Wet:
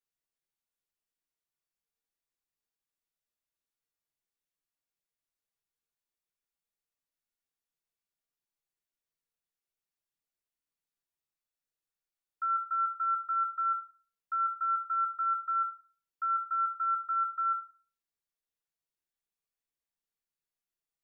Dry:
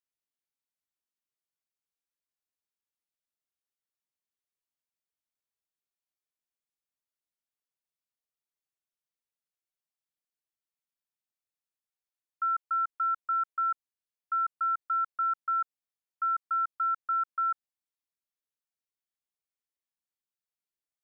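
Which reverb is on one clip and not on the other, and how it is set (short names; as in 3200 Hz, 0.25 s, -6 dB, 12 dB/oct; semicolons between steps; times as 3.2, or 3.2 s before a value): shoebox room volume 31 m³, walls mixed, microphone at 0.66 m; gain -4.5 dB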